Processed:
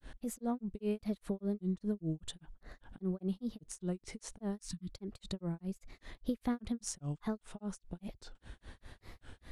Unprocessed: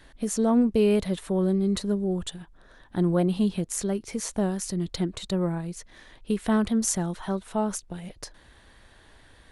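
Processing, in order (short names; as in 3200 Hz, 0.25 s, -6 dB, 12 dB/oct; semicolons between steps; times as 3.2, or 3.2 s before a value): compressor 2:1, threshold -45 dBFS, peak gain reduction 15 dB; low shelf 300 Hz +7.5 dB; spectral delete 4.6–4.93, 330–990 Hz; grains 0.192 s, grains 5/s, spray 14 ms, pitch spread up and down by 3 st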